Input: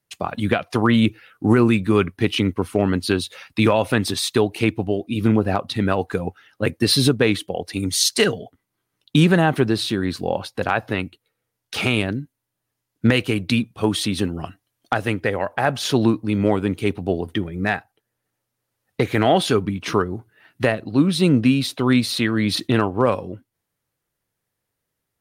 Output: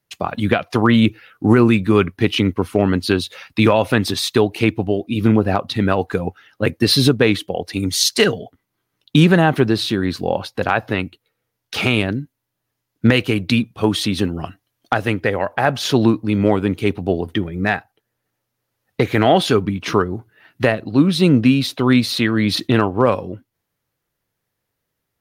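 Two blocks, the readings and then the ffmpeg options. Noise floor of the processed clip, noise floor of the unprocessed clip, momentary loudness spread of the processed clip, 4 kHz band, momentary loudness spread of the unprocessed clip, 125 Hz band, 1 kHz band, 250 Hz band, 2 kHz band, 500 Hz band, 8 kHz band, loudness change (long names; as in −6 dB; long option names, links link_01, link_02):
−77 dBFS, −80 dBFS, 10 LU, +2.5 dB, 10 LU, +3.0 dB, +3.0 dB, +3.0 dB, +3.0 dB, +3.0 dB, 0.0 dB, +3.0 dB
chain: -af "equalizer=frequency=8900:width=1.9:gain=-5.5,volume=3dB"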